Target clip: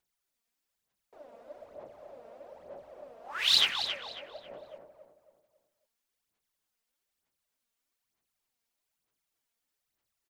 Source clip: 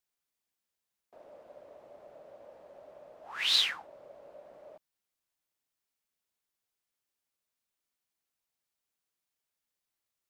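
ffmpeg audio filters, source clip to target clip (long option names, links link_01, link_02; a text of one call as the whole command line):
ffmpeg -i in.wav -filter_complex "[0:a]aphaser=in_gain=1:out_gain=1:delay=4.4:decay=0.65:speed=1.1:type=sinusoidal,asplit=2[link_01][link_02];[link_02]adelay=273,lowpass=frequency=3600:poles=1,volume=-7dB,asplit=2[link_03][link_04];[link_04]adelay=273,lowpass=frequency=3600:poles=1,volume=0.38,asplit=2[link_05][link_06];[link_06]adelay=273,lowpass=frequency=3600:poles=1,volume=0.38,asplit=2[link_07][link_08];[link_08]adelay=273,lowpass=frequency=3600:poles=1,volume=0.38[link_09];[link_01][link_03][link_05][link_07][link_09]amix=inputs=5:normalize=0" out.wav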